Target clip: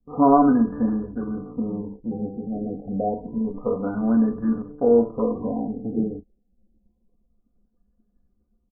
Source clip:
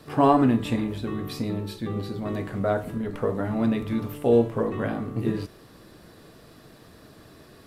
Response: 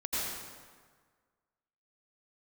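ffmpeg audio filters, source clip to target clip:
-filter_complex "[0:a]agate=range=-33dB:threshold=-47dB:ratio=3:detection=peak,anlmdn=3.98,aecho=1:1:4.1:0.7,atempo=0.88,asplit=2[link_01][link_02];[link_02]aecho=0:1:14|36:0.237|0.15[link_03];[link_01][link_03]amix=inputs=2:normalize=0,afftfilt=real='re*lt(b*sr/1024,810*pow(1800/810,0.5+0.5*sin(2*PI*0.28*pts/sr)))':imag='im*lt(b*sr/1024,810*pow(1800/810,0.5+0.5*sin(2*PI*0.28*pts/sr)))':win_size=1024:overlap=0.75,volume=-1dB"

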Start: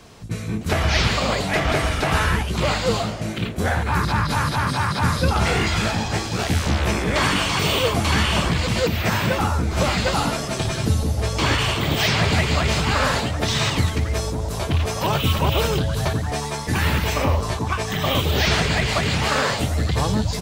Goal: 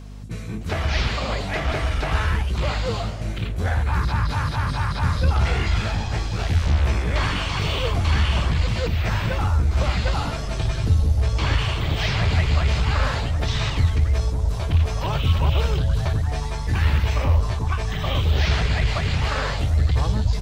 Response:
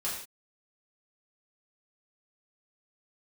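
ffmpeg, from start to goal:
-filter_complex "[0:a]acrossover=split=5900[link_01][link_02];[link_02]acompressor=threshold=-46dB:ratio=4:attack=1:release=60[link_03];[link_01][link_03]amix=inputs=2:normalize=0,aeval=exprs='val(0)+0.0251*(sin(2*PI*50*n/s)+sin(2*PI*2*50*n/s)/2+sin(2*PI*3*50*n/s)/3+sin(2*PI*4*50*n/s)/4+sin(2*PI*5*50*n/s)/5)':channel_layout=same,asubboost=boost=4.5:cutoff=97,asplit=2[link_04][link_05];[link_05]aeval=exprs='clip(val(0),-1,0.188)':channel_layout=same,volume=-5.5dB[link_06];[link_04][link_06]amix=inputs=2:normalize=0,volume=-8.5dB"

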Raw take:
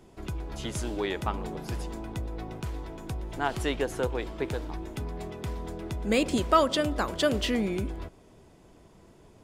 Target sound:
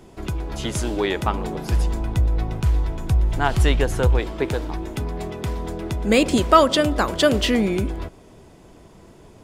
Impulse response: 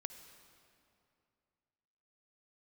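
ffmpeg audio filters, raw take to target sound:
-filter_complex "[0:a]asplit=3[link_01][link_02][link_03];[link_01]afade=type=out:start_time=1.71:duration=0.02[link_04];[link_02]asubboost=boost=4:cutoff=150,afade=type=in:start_time=1.71:duration=0.02,afade=type=out:start_time=4.18:duration=0.02[link_05];[link_03]afade=type=in:start_time=4.18:duration=0.02[link_06];[link_04][link_05][link_06]amix=inputs=3:normalize=0,volume=8dB"

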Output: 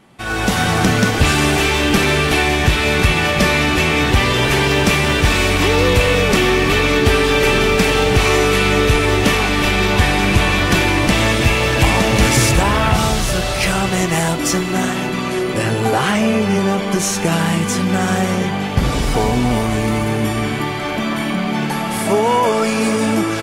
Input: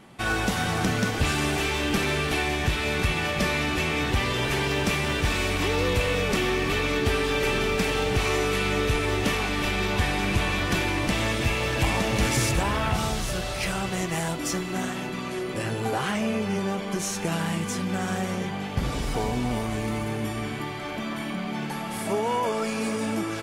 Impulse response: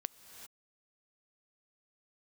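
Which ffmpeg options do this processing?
-af "dynaudnorm=framelen=260:gausssize=3:maxgain=11.5dB"

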